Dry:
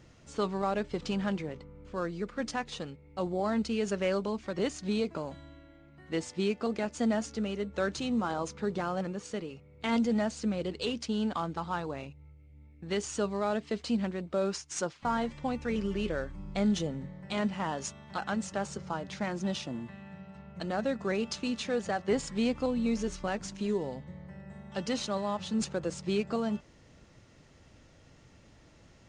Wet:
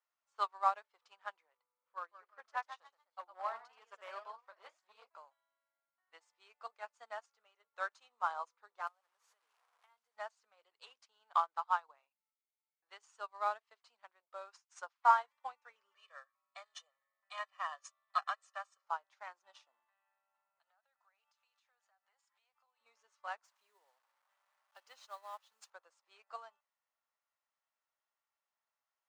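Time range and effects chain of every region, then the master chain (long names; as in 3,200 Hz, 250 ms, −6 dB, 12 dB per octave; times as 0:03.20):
0:01.63–0:05.09: delay with pitch and tempo change per echo 193 ms, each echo +1 semitone, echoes 3, each echo −6 dB + high-shelf EQ 5,200 Hz −9 dB + hard clipping −24 dBFS
0:08.87–0:10.17: linear delta modulator 64 kbit/s, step −36 dBFS + downward compressor 20 to 1, threshold −39 dBFS
0:15.95–0:18.84: high-pass filter 850 Hz + comb filter 1.7 ms, depth 89%
0:20.59–0:22.81: high-pass filter 610 Hz 24 dB per octave + downward compressor, threshold −46 dBFS + notch filter 1,100 Hz, Q 14
0:23.44–0:25.70: dynamic equaliser 980 Hz, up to −5 dB, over −45 dBFS, Q 1.4 + bit-depth reduction 8 bits, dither none
whole clip: high-pass filter 700 Hz 24 dB per octave; parametric band 1,100 Hz +10 dB 1.2 octaves; expander for the loud parts 2.5 to 1, over −43 dBFS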